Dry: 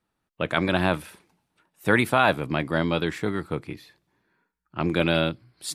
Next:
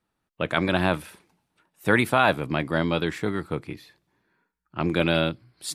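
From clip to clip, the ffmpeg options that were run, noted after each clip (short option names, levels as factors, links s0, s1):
-af anull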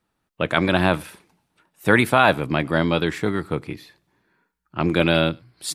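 -filter_complex "[0:a]asplit=2[s0][s1];[s1]adelay=99.13,volume=0.0398,highshelf=f=4000:g=-2.23[s2];[s0][s2]amix=inputs=2:normalize=0,volume=1.58"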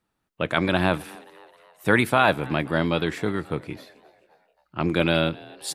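-filter_complex "[0:a]asplit=5[s0][s1][s2][s3][s4];[s1]adelay=264,afreqshift=110,volume=0.0708[s5];[s2]adelay=528,afreqshift=220,volume=0.0376[s6];[s3]adelay=792,afreqshift=330,volume=0.02[s7];[s4]adelay=1056,afreqshift=440,volume=0.0106[s8];[s0][s5][s6][s7][s8]amix=inputs=5:normalize=0,volume=0.708"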